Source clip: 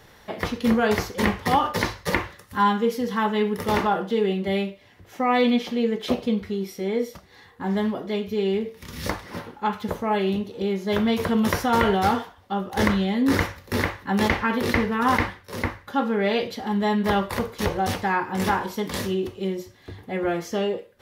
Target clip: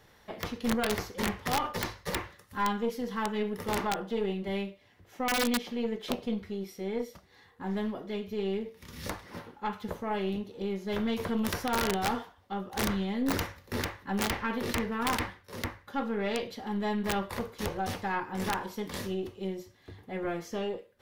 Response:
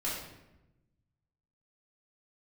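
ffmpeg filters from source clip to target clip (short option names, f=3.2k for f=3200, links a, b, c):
-af "aeval=exprs='(tanh(4.47*val(0)+0.5)-tanh(0.5))/4.47':c=same,aeval=exprs='(mod(4.47*val(0)+1,2)-1)/4.47':c=same,volume=-6.5dB"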